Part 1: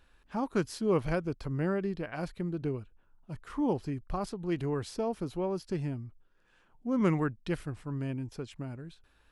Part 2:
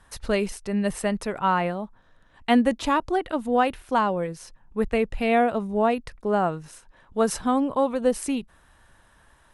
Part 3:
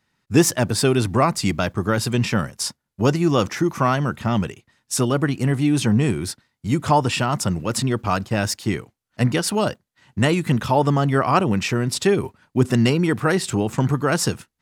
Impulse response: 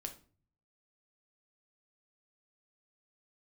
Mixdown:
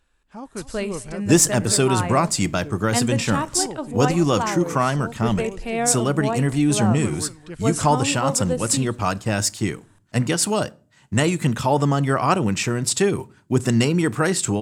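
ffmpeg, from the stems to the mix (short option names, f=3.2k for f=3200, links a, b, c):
-filter_complex "[0:a]volume=-4dB,asplit=2[a][b];[b]volume=-15dB[c];[1:a]adelay=450,volume=-6dB,asplit=3[d][e][f];[e]volume=-5.5dB[g];[f]volume=-22.5dB[h];[2:a]adelay=950,volume=-3dB,asplit=2[i][j];[j]volume=-8.5dB[k];[3:a]atrim=start_sample=2205[l];[g][k]amix=inputs=2:normalize=0[m];[m][l]afir=irnorm=-1:irlink=0[n];[c][h]amix=inputs=2:normalize=0,aecho=0:1:232:1[o];[a][d][i][n][o]amix=inputs=5:normalize=0,equalizer=f=7.7k:t=o:w=0.61:g=9.5"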